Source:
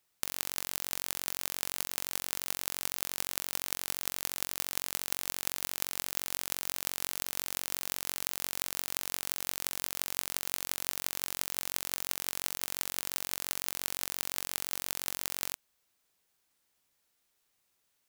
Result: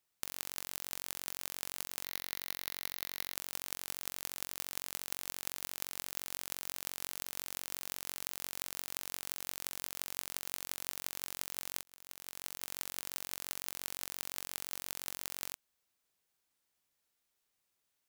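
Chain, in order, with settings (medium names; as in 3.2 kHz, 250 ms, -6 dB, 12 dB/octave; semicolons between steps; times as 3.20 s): 2.04–3.35 s: graphic EQ with 31 bands 2 kHz +7 dB, 4 kHz +7 dB, 8 kHz -12 dB, 16 kHz +4 dB; 11.83–12.73 s: fade in linear; trim -6 dB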